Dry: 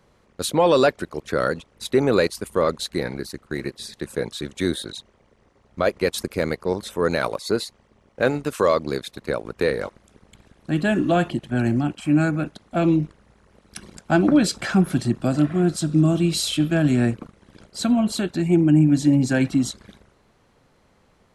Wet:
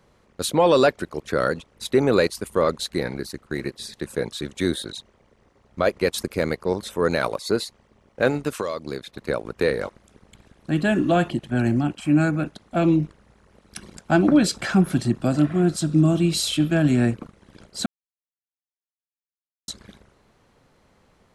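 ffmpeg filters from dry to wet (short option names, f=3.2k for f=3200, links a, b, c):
-filter_complex "[0:a]asettb=1/sr,asplit=3[a][b][c];[a]atrim=end=8.584[d];[b]atrim=start=8.58:end=9.18,asetpts=PTS-STARTPTS,afade=t=in:d=0.004:c=qsin,afade=t=out:st=0.596:d=0.004:c=qsin,acrossover=split=3100|7000[e][f][g];[e]acompressor=threshold=-26dB:ratio=4[h];[f]acompressor=threshold=-45dB:ratio=4[i];[g]acompressor=threshold=-58dB:ratio=4[j];[h][i][j]amix=inputs=3:normalize=0[k];[c]atrim=start=9.176[l];[d][k]acrossfade=d=0.004:c1=hsin:c2=qsin[m];[m][l]acrossfade=d=0.004:c1=qsin:c2=hsin,asplit=3[n][o][p];[n]atrim=end=17.86,asetpts=PTS-STARTPTS,afade=t=out:st=17.856:d=0.004:c=hsin[q];[o]atrim=start=17.86:end=19.68,asetpts=PTS-STARTPTS,volume=0[r];[p]atrim=start=19.68,asetpts=PTS-STARTPTS,afade=t=in:d=0.004:c=hsin[s];[q][r][s]concat=n=3:v=0:a=1"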